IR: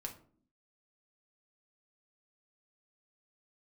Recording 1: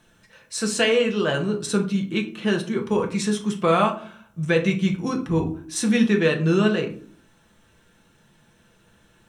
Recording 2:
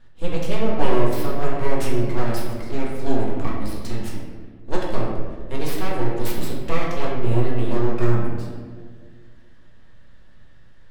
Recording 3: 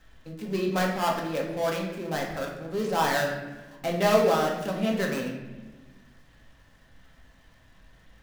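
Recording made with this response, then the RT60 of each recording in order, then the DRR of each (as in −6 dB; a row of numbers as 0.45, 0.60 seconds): 1; 0.50, 1.8, 1.2 seconds; 1.5, −4.0, −1.5 decibels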